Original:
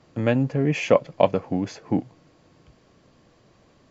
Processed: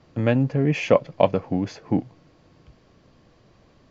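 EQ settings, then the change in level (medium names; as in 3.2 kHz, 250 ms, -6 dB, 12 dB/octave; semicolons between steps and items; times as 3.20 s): low-pass 6.4 kHz 24 dB/octave; bass shelf 91 Hz +7 dB; 0.0 dB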